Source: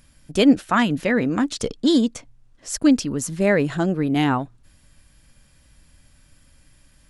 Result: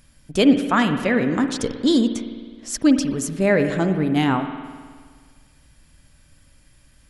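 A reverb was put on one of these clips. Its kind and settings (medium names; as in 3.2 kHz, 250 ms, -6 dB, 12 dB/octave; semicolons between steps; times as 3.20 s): spring tank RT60 1.7 s, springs 52 ms, chirp 75 ms, DRR 7.5 dB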